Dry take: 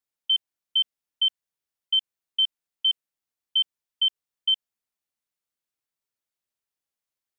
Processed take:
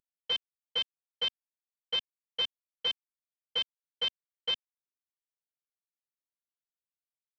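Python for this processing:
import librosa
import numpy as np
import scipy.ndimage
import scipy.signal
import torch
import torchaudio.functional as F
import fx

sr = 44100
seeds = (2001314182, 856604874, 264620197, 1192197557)

y = fx.cvsd(x, sr, bps=32000)
y = y * 10.0 ** (-7.0 / 20.0)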